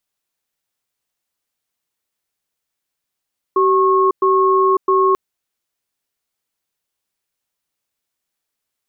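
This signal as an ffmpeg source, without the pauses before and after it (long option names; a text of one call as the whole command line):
ffmpeg -f lavfi -i "aevalsrc='0.211*(sin(2*PI*382*t)+sin(2*PI*1090*t))*clip(min(mod(t,0.66),0.55-mod(t,0.66))/0.005,0,1)':duration=1.59:sample_rate=44100" out.wav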